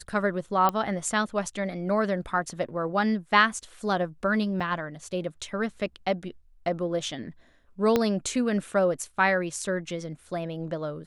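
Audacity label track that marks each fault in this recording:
0.690000	0.690000	pop -12 dBFS
4.600000	4.610000	dropout 5.1 ms
7.960000	7.960000	pop -9 dBFS

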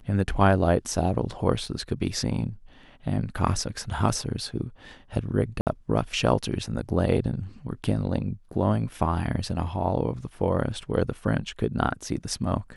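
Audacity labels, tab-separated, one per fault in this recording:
1.660000	1.660000	dropout 3.1 ms
5.610000	5.670000	dropout 58 ms

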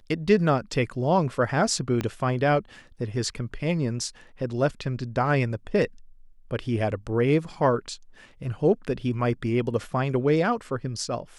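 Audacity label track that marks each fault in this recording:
2.010000	2.010000	pop -14 dBFS

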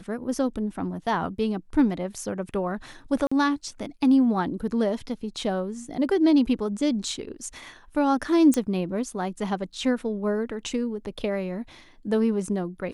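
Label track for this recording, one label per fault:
3.270000	3.310000	dropout 45 ms
8.540000	8.540000	pop -12 dBFS

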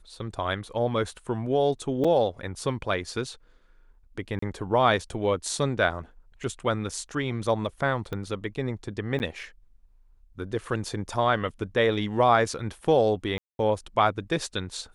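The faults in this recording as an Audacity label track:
2.040000	2.050000	dropout 5.3 ms
4.390000	4.420000	dropout 34 ms
8.130000	8.130000	pop -20 dBFS
9.190000	9.200000	dropout 9.8 ms
13.380000	13.590000	dropout 211 ms

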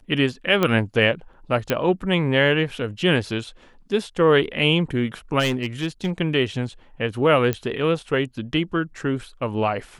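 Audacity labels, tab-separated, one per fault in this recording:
0.630000	0.630000	pop -7 dBFS
1.700000	1.700000	pop -7 dBFS
5.390000	6.110000	clipped -17 dBFS
7.530000	7.530000	pop -10 dBFS

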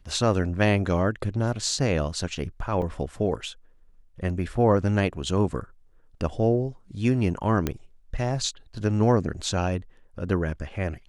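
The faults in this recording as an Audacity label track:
2.820000	2.820000	dropout 3.9 ms
7.670000	7.670000	pop -11 dBFS

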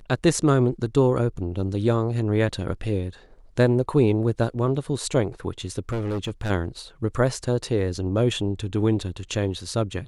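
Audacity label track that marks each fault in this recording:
5.890000	6.510000	clipped -23 dBFS

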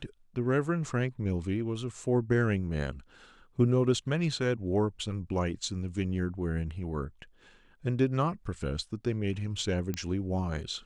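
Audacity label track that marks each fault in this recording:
9.940000	9.940000	pop -19 dBFS

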